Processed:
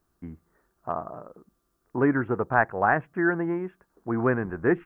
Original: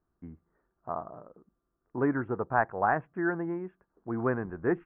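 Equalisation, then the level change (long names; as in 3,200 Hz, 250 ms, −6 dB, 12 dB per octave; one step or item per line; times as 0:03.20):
dynamic equaliser 970 Hz, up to −4 dB, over −36 dBFS, Q 0.93
high-shelf EQ 2,400 Hz +11 dB
+5.5 dB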